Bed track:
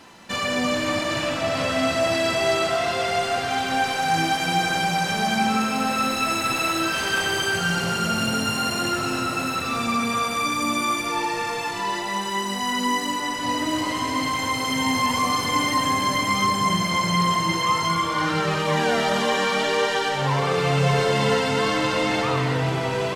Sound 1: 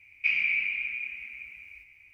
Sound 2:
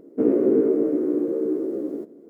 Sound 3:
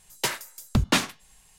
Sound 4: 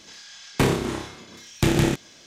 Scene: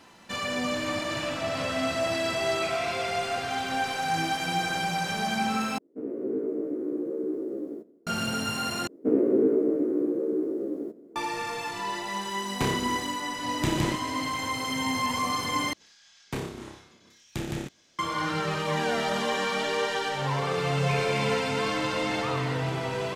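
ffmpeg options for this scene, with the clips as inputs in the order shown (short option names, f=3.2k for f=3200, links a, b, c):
-filter_complex "[1:a]asplit=2[a][b];[2:a]asplit=2[c][d];[4:a]asplit=2[e][f];[0:a]volume=-6dB[g];[c]dynaudnorm=f=180:g=5:m=12dB[h];[b]aeval=exprs='clip(val(0),-1,0.119)':c=same[i];[g]asplit=4[j][k][l][m];[j]atrim=end=5.784[n];[h]atrim=end=2.29,asetpts=PTS-STARTPTS,volume=-16.5dB[o];[k]atrim=start=8.066:end=8.874[p];[d]atrim=end=2.29,asetpts=PTS-STARTPTS,volume=-3.5dB[q];[l]atrim=start=11.156:end=15.734[r];[f]atrim=end=2.26,asetpts=PTS-STARTPTS,volume=-13dB[s];[m]atrim=start=17.986[t];[a]atrim=end=2.13,asetpts=PTS-STARTPTS,volume=-15dB,afade=t=in:d=0.004:c=hsin,afade=t=out:st=2.126:d=0.004:c=hsin,adelay=2380[u];[e]atrim=end=2.26,asetpts=PTS-STARTPTS,volume=-8dB,afade=t=in:d=0.004:c=hsin,afade=t=out:st=2.256:d=0.004:c=hsin,adelay=12010[v];[i]atrim=end=2.13,asetpts=PTS-STARTPTS,volume=-11.5dB,afade=t=in:d=0.004:c=hsin,afade=t=out:st=2.126:d=0.004:c=hsin,adelay=20650[w];[n][o]acrossfade=d=0.004:c1=hsin:c2=hsin[x];[x][p]acrossfade=d=0.004:c1=hsin:c2=hsin[y];[y][q]acrossfade=d=0.004:c1=hsin:c2=hsin[z];[z][r]acrossfade=d=0.004:c1=hsin:c2=hsin[aa];[aa][s]acrossfade=d=0.004:c1=hsin:c2=hsin[ab];[ab][t]acrossfade=d=0.004:c1=hsin:c2=hsin[ac];[ac][u][v][w]amix=inputs=4:normalize=0"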